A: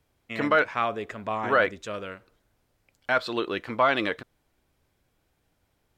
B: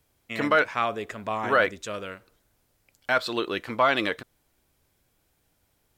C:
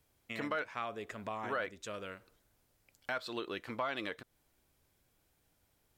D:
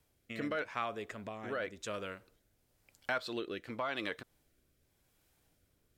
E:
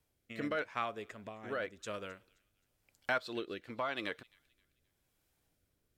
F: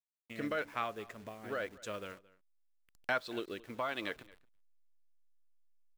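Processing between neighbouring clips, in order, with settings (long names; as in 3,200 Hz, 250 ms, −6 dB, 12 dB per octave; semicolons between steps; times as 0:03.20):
high-shelf EQ 5,600 Hz +10 dB
downward compressor 2 to 1, threshold −37 dBFS, peak gain reduction 11.5 dB; level −4.5 dB
rotating-speaker cabinet horn 0.9 Hz; level +3 dB
delay with a high-pass on its return 263 ms, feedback 36%, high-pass 2,400 Hz, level −19 dB; expander for the loud parts 1.5 to 1, over −46 dBFS; level +2 dB
hold until the input has moved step −55 dBFS; slap from a distant wall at 38 metres, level −21 dB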